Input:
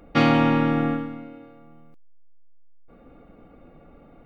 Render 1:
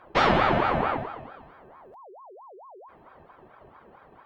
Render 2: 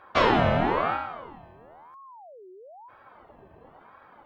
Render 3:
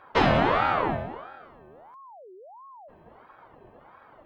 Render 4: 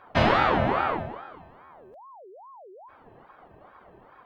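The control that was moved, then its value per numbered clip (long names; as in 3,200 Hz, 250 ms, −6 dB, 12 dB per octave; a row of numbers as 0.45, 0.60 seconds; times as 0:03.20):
ring modulator whose carrier an LFO sweeps, at: 4.5, 1, 1.5, 2.4 Hertz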